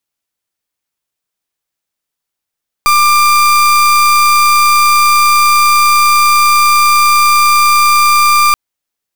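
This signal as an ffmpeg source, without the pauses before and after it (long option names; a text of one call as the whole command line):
ffmpeg -f lavfi -i "aevalsrc='0.398*(2*lt(mod(1190*t,1),0.36)-1)':duration=5.68:sample_rate=44100" out.wav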